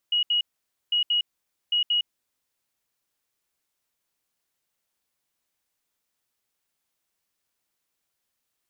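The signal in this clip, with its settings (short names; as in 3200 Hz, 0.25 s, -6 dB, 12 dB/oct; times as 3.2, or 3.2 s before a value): beep pattern sine 2900 Hz, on 0.11 s, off 0.07 s, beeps 2, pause 0.51 s, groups 3, -19.5 dBFS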